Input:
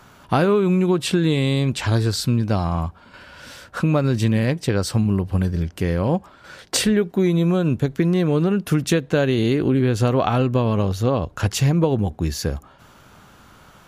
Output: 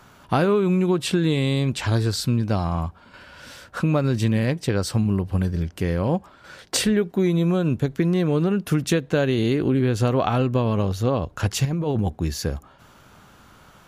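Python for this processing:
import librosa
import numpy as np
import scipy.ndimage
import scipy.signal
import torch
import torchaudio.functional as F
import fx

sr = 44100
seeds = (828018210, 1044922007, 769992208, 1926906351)

y = fx.over_compress(x, sr, threshold_db=-21.0, ratio=-1.0, at=(11.65, 12.1))
y = F.gain(torch.from_numpy(y), -2.0).numpy()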